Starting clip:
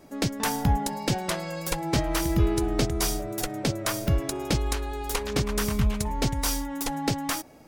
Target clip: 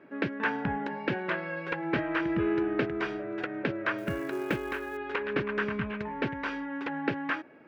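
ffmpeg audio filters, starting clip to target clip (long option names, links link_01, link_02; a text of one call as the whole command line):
ffmpeg -i in.wav -filter_complex "[0:a]highpass=210,equalizer=frequency=370:width_type=q:width=4:gain=4,equalizer=frequency=750:width_type=q:width=4:gain=-7,equalizer=frequency=1600:width_type=q:width=4:gain=10,equalizer=frequency=2600:width_type=q:width=4:gain=4,lowpass=frequency=2600:width=0.5412,lowpass=frequency=2600:width=1.3066,asettb=1/sr,asplit=3[link_01][link_02][link_03];[link_01]atrim=end=3.984[link_04];[link_02]atrim=start=3.98:end=4.97,asetpts=PTS-STARTPTS,afade=type=in:duration=0.004:curve=qsin,afade=type=out:start_time=0.986:duration=0.004:curve=qsin,acrusher=bits=6:mode=log:mix=0:aa=0.000001[link_05];[link_03]atrim=start=4.966[link_06];[link_04][link_05]acrossfade=duration=0.004:curve1=hsin:curve2=qsin[link_07];[link_07][link_06]acrossfade=duration=0.004:curve1=qsin:curve2=hsin,volume=-2dB" out.wav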